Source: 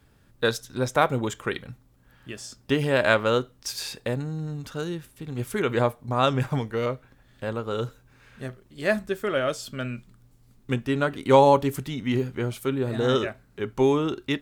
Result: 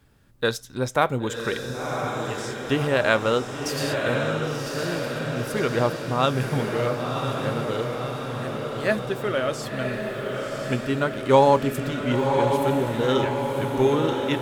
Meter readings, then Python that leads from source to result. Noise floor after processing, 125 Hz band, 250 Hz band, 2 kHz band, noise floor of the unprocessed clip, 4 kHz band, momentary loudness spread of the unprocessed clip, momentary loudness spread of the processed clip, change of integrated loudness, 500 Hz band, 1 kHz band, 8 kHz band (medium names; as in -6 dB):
-34 dBFS, +2.0 dB, +1.5 dB, +2.0 dB, -59 dBFS, +2.0 dB, 15 LU, 9 LU, +1.0 dB, +2.0 dB, +2.0 dB, +2.0 dB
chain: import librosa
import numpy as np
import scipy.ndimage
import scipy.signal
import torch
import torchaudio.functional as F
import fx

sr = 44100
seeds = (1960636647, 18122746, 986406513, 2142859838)

y = fx.echo_diffused(x, sr, ms=1048, feedback_pct=65, wet_db=-4.0)